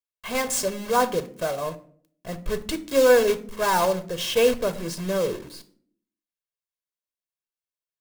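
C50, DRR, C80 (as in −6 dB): 15.5 dB, 10.5 dB, 20.5 dB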